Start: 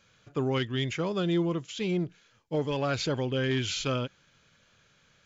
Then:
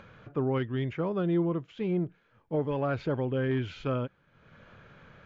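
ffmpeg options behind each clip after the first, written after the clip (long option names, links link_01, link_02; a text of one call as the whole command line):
ffmpeg -i in.wav -af "lowpass=1500,acompressor=mode=upward:threshold=-40dB:ratio=2.5" out.wav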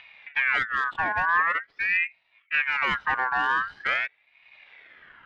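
ffmpeg -i in.wav -af "adynamicsmooth=sensitivity=3.5:basefreq=1000,aeval=exprs='val(0)*sin(2*PI*1800*n/s+1800*0.3/0.45*sin(2*PI*0.45*n/s))':channel_layout=same,volume=7dB" out.wav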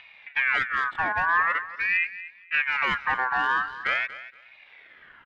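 ffmpeg -i in.wav -af "aecho=1:1:235|470:0.178|0.0373" out.wav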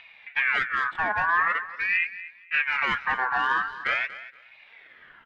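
ffmpeg -i in.wav -af "flanger=delay=4.3:depth=4.5:regen=57:speed=1.9:shape=sinusoidal,volume=4dB" out.wav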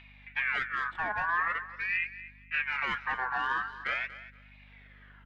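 ffmpeg -i in.wav -af "aeval=exprs='val(0)+0.00355*(sin(2*PI*50*n/s)+sin(2*PI*2*50*n/s)/2+sin(2*PI*3*50*n/s)/3+sin(2*PI*4*50*n/s)/4+sin(2*PI*5*50*n/s)/5)':channel_layout=same,volume=-6.5dB" out.wav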